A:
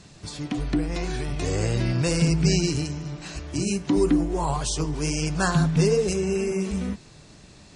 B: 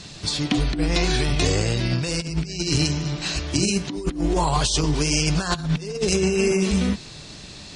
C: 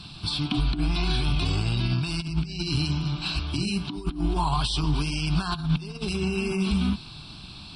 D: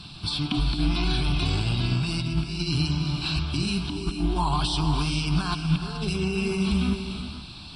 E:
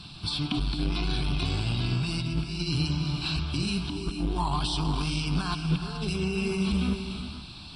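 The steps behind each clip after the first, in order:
bell 3900 Hz +8.5 dB 1.4 oct; negative-ratio compressor -25 dBFS, ratio -0.5; gain +4 dB
limiter -13 dBFS, peak gain reduction 6.5 dB; fixed phaser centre 1900 Hz, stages 6
non-linear reverb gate 0.5 s rising, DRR 6.5 dB
core saturation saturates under 130 Hz; gain -2 dB

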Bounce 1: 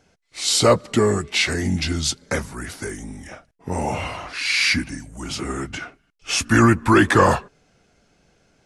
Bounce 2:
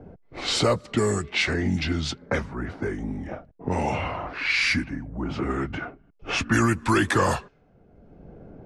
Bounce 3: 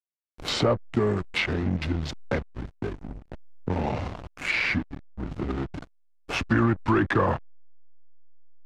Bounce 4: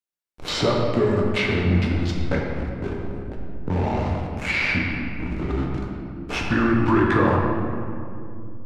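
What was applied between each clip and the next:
low-pass opened by the level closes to 540 Hz, open at -13.5 dBFS; three-band squash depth 70%; gain -2.5 dB
dynamic EQ 8400 Hz, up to +4 dB, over -45 dBFS, Q 1.3; backlash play -21.5 dBFS; treble ducked by the level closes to 1800 Hz, closed at -18 dBFS
reverb RT60 2.5 s, pre-delay 7 ms, DRR -1.5 dB

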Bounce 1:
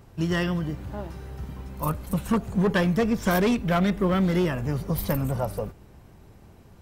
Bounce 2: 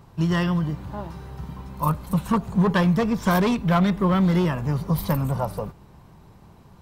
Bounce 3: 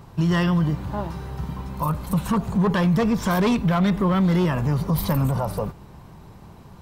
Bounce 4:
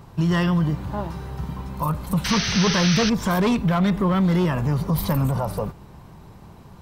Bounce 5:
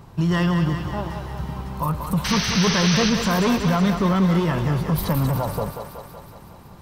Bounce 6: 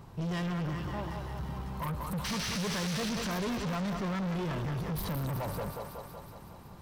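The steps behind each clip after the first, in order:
fifteen-band EQ 160 Hz +7 dB, 1000 Hz +9 dB, 4000 Hz +4 dB; gain -1.5 dB
limiter -19 dBFS, peak gain reduction 9.5 dB; gain +5 dB
painted sound noise, 2.24–3.1, 1200–6300 Hz -26 dBFS
thinning echo 0.186 s, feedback 68%, high-pass 300 Hz, level -6.5 dB
soft clip -25.5 dBFS, distortion -7 dB; gain -5.5 dB

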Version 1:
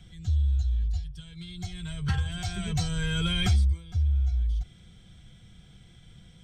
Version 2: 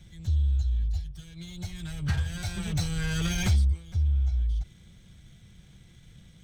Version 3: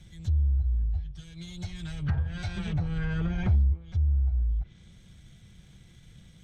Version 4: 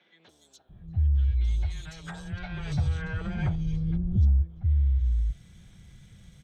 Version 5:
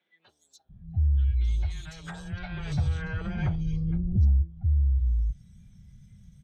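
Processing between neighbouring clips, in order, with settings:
minimum comb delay 0.51 ms
treble ducked by the level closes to 1000 Hz, closed at -23 dBFS
three bands offset in time mids, highs, lows 0.29/0.69 s, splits 350/3400 Hz; gain +1.5 dB
spectral noise reduction 13 dB

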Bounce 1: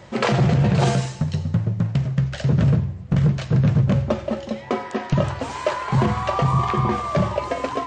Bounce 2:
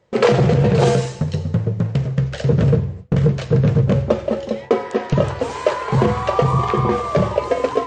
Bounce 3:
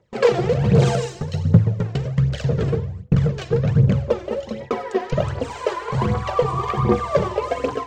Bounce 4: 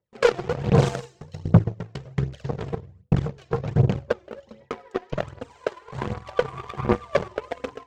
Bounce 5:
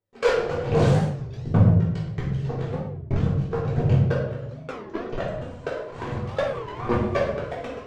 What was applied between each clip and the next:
gate with hold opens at -25 dBFS; bell 460 Hz +13 dB 0.37 oct; gain +1.5 dB
AGC; phaser 1.3 Hz, delay 3 ms, feedback 63%; gain -7 dB
added harmonics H 5 -33 dB, 7 -17 dB, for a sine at -1 dBFS; gain -2 dB
reverb RT60 0.80 s, pre-delay 3 ms, DRR -6.5 dB; record warp 33 1/3 rpm, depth 250 cents; gain -7.5 dB

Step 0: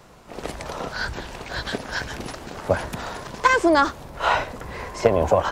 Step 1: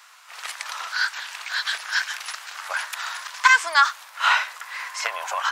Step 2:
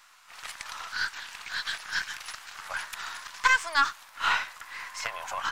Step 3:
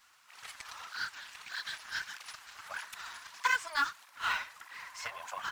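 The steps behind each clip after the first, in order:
HPF 1200 Hz 24 dB/oct; gain +6 dB
half-wave gain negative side -3 dB; gain -5.5 dB
in parallel at -10 dB: companded quantiser 4-bit; on the sum: tape flanging out of phase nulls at 1.6 Hz, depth 7.3 ms; gain -6.5 dB

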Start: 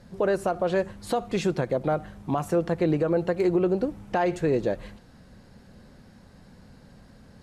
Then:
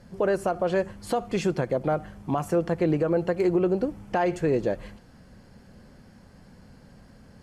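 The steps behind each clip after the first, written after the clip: notch 3800 Hz, Q 9.3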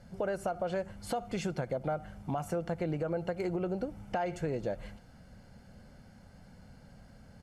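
comb 1.4 ms, depth 39%; compressor 2.5:1, threshold -27 dBFS, peak gain reduction 6 dB; gain -4.5 dB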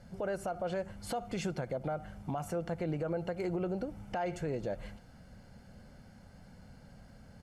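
limiter -26.5 dBFS, peak gain reduction 4.5 dB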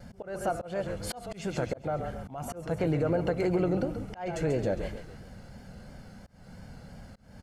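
frequency-shifting echo 0.136 s, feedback 43%, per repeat -34 Hz, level -9 dB; auto swell 0.263 s; vibrato 2.9 Hz 54 cents; gain +7 dB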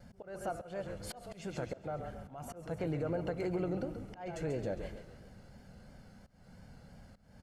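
reverb RT60 1.9 s, pre-delay 0.11 s, DRR 19 dB; gain -8 dB

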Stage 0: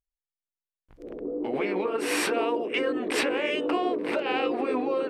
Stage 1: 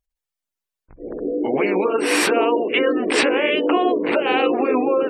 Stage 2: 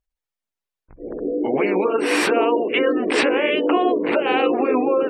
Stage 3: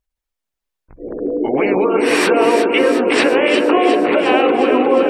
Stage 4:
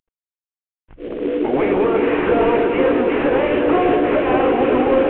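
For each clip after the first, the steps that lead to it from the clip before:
spectral gate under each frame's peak -30 dB strong; gain +8.5 dB
high shelf 4900 Hz -7.5 dB
echo with dull and thin repeats by turns 0.179 s, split 990 Hz, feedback 81%, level -5 dB; gain +3.5 dB
CVSD 16 kbps

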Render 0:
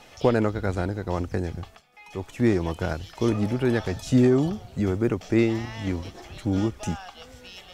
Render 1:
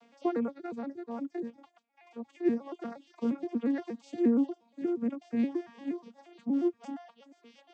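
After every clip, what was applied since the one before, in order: arpeggiated vocoder minor triad, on A#3, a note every 0.118 s; reverb removal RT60 0.75 s; gain -6 dB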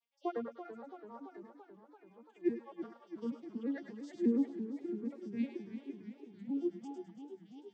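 per-bin expansion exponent 2; thinning echo 0.104 s, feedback 40%, high-pass 990 Hz, level -7 dB; warbling echo 0.336 s, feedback 69%, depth 93 cents, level -11 dB; gain -3 dB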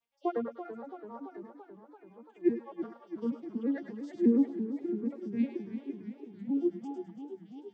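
high shelf 2400 Hz -9 dB; gain +6 dB

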